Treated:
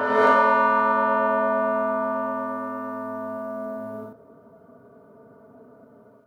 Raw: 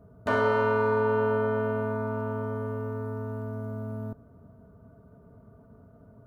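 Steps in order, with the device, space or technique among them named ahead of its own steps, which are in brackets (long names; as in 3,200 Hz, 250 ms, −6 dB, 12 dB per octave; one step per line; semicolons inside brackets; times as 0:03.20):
ghost voice (reversed playback; convolution reverb RT60 2.1 s, pre-delay 25 ms, DRR −8 dB; reversed playback; high-pass filter 340 Hz 12 dB per octave)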